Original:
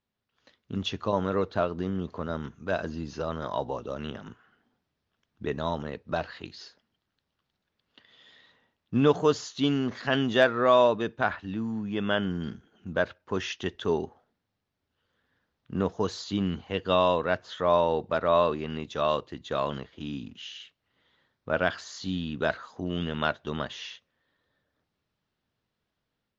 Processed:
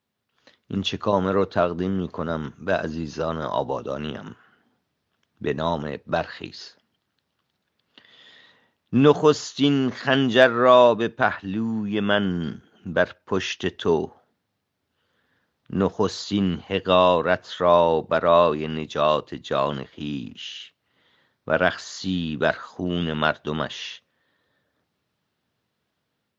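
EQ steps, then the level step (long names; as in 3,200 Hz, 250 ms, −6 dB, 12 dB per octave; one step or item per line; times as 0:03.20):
high-pass filter 91 Hz
+6.0 dB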